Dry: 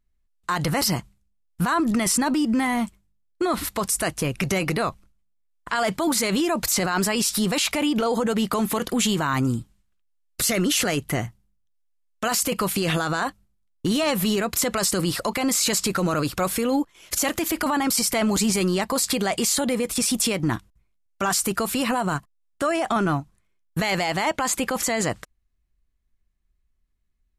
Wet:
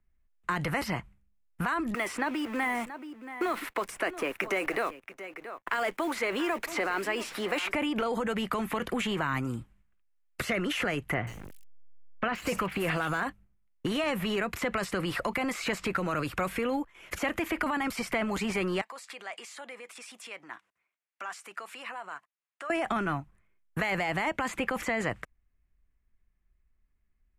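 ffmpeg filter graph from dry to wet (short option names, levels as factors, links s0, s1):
-filter_complex "[0:a]asettb=1/sr,asplit=3[s0][s1][s2];[s0]atrim=end=1.944[s3];[s1]atrim=start=1.94:end=7.73,asetpts=PTS-STARTPTS,afade=t=in:d=0.004:c=qsin,afade=t=out:st=5.786:d=0.004:c=qsin,highpass=f=310:w=0.5412,highpass=f=310:w=1.3066,acrusher=bits=7:dc=4:mix=0:aa=0.000001,aecho=1:1:678:0.141,atrim=end_sample=255339[s4];[s2]atrim=start=7.726[s5];[s3][s4]acrossfade=d=0.004:c1=hsin:c2=qsin[s6];[s6][s5]acrossfade=d=0.004:c1=qsin:c2=hsin,asettb=1/sr,asplit=3[s7][s8][s9];[s7]atrim=end=11.144[s10];[s8]atrim=start=11.14:end=13.23,asetpts=PTS-STARTPTS,afade=t=in:d=0.004:c=qsin,afade=t=out:st=2.086:d=0.004:c=qsin,aeval=exprs='val(0)+0.5*0.0211*sgn(val(0))':c=same,acrossover=split=3500[s11][s12];[s12]adelay=130[s13];[s11][s13]amix=inputs=2:normalize=0,atrim=end_sample=92169[s14];[s9]atrim=start=13.226[s15];[s10][s14]acrossfade=d=0.004:c1=hsin:c2=qsin[s16];[s16][s15]acrossfade=d=0.004:c1=qsin:c2=hsin,asettb=1/sr,asplit=3[s17][s18][s19];[s17]atrim=end=18.814[s20];[s18]atrim=start=18.81:end=22.7,asetpts=PTS-STARTPTS,afade=t=in:d=0.004:c=qsin,afade=t=out:st=3.886:d=0.004:c=qsin,acompressor=threshold=0.00398:ratio=2:attack=3.2:release=140:knee=1:detection=peak,highpass=660,lowpass=7700,highshelf=f=2800:g=7.5[s21];[s19]atrim=start=22.696[s22];[s20][s21]acrossfade=d=0.004:c1=hsin:c2=qsin[s23];[s23][s22]acrossfade=d=0.004:c1=qsin:c2=hsin,highshelf=f=3100:t=q:w=1.5:g=-11,acrossover=split=82|430|2000|4900[s24][s25][s26][s27][s28];[s24]acompressor=threshold=0.00447:ratio=4[s29];[s25]acompressor=threshold=0.0178:ratio=4[s30];[s26]acompressor=threshold=0.0251:ratio=4[s31];[s27]acompressor=threshold=0.0178:ratio=4[s32];[s28]acompressor=threshold=0.00398:ratio=4[s33];[s29][s30][s31][s32][s33]amix=inputs=5:normalize=0"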